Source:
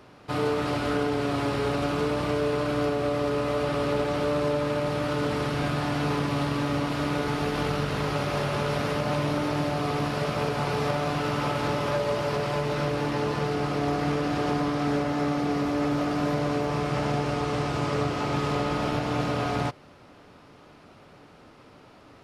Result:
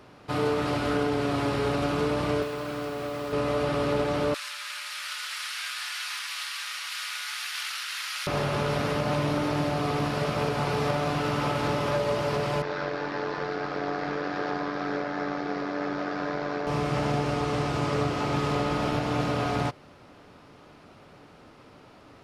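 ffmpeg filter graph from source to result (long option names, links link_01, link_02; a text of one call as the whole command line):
ffmpeg -i in.wav -filter_complex "[0:a]asettb=1/sr,asplit=3[link_01][link_02][link_03];[link_01]atrim=end=2.424[link_04];[link_02]atrim=start=2.42:end=3.33,asetpts=PTS-STARTPTS,afade=type=in:duration=0.004:curve=qsin,afade=type=out:start_time=0.906:duration=0.004:curve=qsin,acrossover=split=120|890[link_05][link_06][link_07];[link_05]acompressor=threshold=-52dB:ratio=4[link_08];[link_06]acompressor=threshold=-33dB:ratio=4[link_09];[link_07]acompressor=threshold=-38dB:ratio=4[link_10];[link_08][link_09][link_10]amix=inputs=3:normalize=0,acrusher=bits=7:mix=0:aa=0.5[link_11];[link_03]atrim=start=3.326[link_12];[link_04][link_11]acrossfade=duration=0.004:curve1=hsin:curve2=qsin[link_13];[link_13][link_12]acrossfade=duration=0.004:curve1=qsin:curve2=hsin,asettb=1/sr,asplit=3[link_14][link_15][link_16];[link_14]atrim=end=4.344[link_17];[link_15]atrim=start=4.34:end=8.27,asetpts=PTS-STARTPTS,afade=type=in:duration=0.004:curve=qsin,afade=type=out:start_time=3.926:duration=0.004:curve=qsin,highpass=frequency=1500:width=0.5412,highpass=frequency=1500:width=1.3066,highshelf=frequency=3700:gain=10[link_18];[link_16]atrim=start=8.266[link_19];[link_17][link_18]acrossfade=duration=0.004:curve1=hsin:curve2=qsin[link_20];[link_20][link_19]acrossfade=duration=0.004:curve1=qsin:curve2=hsin,asettb=1/sr,asplit=3[link_21][link_22][link_23];[link_21]atrim=end=12.624[link_24];[link_22]atrim=start=12.62:end=16.67,asetpts=PTS-STARTPTS,afade=type=in:duration=0.004:curve=qsin,afade=type=out:start_time=4.046:duration=0.004:curve=qsin,highpass=230,equalizer=frequency=240:width_type=q:width=4:gain=-7,equalizer=frequency=1600:width_type=q:width=4:gain=7,equalizer=frequency=2900:width_type=q:width=4:gain=-6,lowpass=frequency=5400:width=0.5412,lowpass=frequency=5400:width=1.3066,tremolo=f=92:d=0.571[link_25];[link_23]atrim=start=16.666[link_26];[link_24][link_25]acrossfade=duration=0.004:curve1=hsin:curve2=qsin[link_27];[link_27][link_26]acrossfade=duration=0.004:curve1=qsin:curve2=hsin" out.wav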